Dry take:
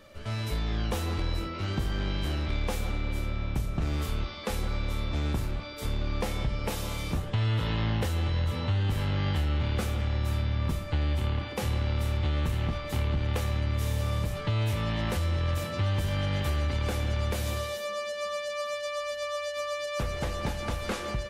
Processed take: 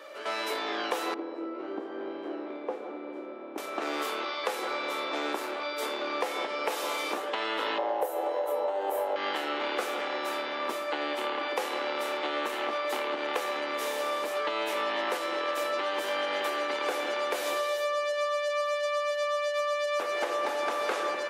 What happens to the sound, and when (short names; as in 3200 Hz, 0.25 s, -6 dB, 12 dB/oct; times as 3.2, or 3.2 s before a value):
1.14–3.58 band-pass 280 Hz, Q 1.1
7.78–9.16 EQ curve 120 Hz 0 dB, 190 Hz -12 dB, 590 Hz +11 dB, 830 Hz +7 dB, 1200 Hz -5 dB, 2800 Hz -11 dB, 4800 Hz -12 dB, 13000 Hz +12 dB
20.1–20.94 reverb throw, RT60 2.3 s, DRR 5 dB
whole clip: steep high-pass 310 Hz 36 dB/oct; bell 1000 Hz +8 dB 2.9 oct; compressor, threshold -29 dBFS; gain +2.5 dB